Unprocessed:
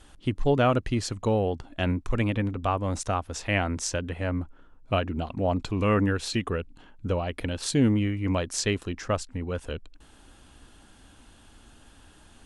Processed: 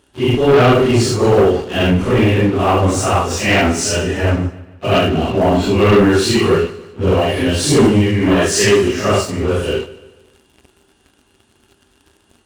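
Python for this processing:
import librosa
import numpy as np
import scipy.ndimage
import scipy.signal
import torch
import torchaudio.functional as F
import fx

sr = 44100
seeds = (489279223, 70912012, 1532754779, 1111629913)

y = fx.phase_scramble(x, sr, seeds[0], window_ms=200)
y = scipy.signal.sosfilt(scipy.signal.butter(2, 67.0, 'highpass', fs=sr, output='sos'), y)
y = fx.small_body(y, sr, hz=(390.0, 2800.0), ring_ms=95, db=14)
y = fx.leveller(y, sr, passes=3)
y = fx.notch_comb(y, sr, f0_hz=540.0, at=(3.72, 4.24))
y = fx.peak_eq(y, sr, hz=1700.0, db=10.0, octaves=0.25, at=(8.15, 8.88))
y = fx.echo_feedback(y, sr, ms=147, feedback_pct=46, wet_db=-17.5)
y = y * 10.0 ** (3.0 / 20.0)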